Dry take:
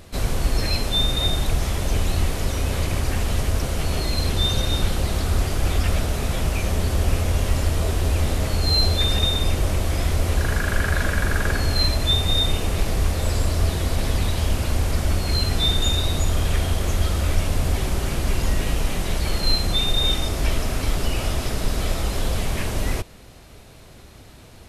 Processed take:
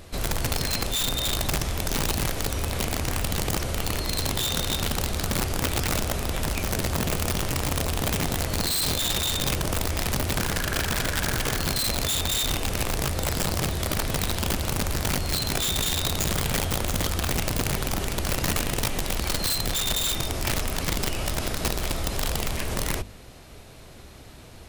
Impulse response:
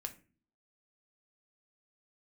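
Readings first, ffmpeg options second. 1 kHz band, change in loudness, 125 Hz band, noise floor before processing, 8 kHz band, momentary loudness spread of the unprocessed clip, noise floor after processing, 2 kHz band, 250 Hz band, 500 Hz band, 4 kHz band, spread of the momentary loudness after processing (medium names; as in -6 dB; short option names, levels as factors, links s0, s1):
-0.5 dB, -3.0 dB, -6.5 dB, -44 dBFS, +4.0 dB, 6 LU, -45 dBFS, -1.0 dB, -2.0 dB, -2.5 dB, -3.5 dB, 4 LU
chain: -af "bandreject=f=50:t=h:w=6,bandreject=f=100:t=h:w=6,bandreject=f=150:t=h:w=6,bandreject=f=200:t=h:w=6,bandreject=f=250:t=h:w=6,aeval=exprs='(mod(5.62*val(0)+1,2)-1)/5.62':c=same,alimiter=limit=0.1:level=0:latency=1:release=47"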